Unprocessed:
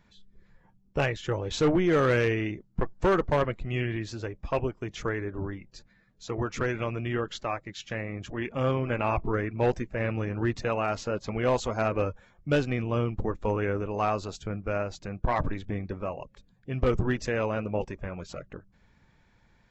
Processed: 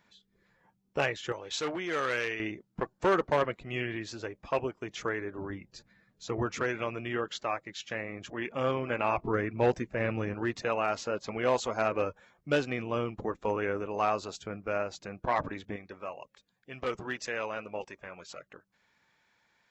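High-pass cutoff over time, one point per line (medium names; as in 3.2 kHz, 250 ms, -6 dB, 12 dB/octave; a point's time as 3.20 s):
high-pass 6 dB/octave
410 Hz
from 1.32 s 1.4 kHz
from 2.40 s 360 Hz
from 5.50 s 110 Hz
from 6.55 s 360 Hz
from 9.23 s 150 Hz
from 10.34 s 370 Hz
from 15.76 s 1.1 kHz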